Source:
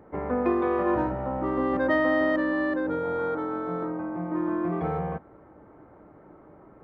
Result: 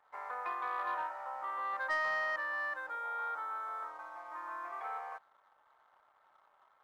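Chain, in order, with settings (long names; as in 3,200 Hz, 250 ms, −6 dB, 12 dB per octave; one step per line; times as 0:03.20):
high-pass filter 940 Hz 24 dB per octave
high-shelf EQ 3,200 Hz −9.5 dB
leveller curve on the samples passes 1
level −5 dB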